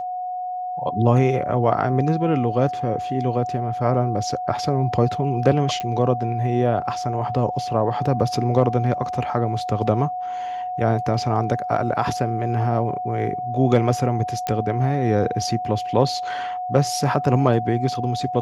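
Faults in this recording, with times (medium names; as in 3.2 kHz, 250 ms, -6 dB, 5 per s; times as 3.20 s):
whine 730 Hz -25 dBFS
5.80 s: pop -14 dBFS
14.47 s: pop -11 dBFS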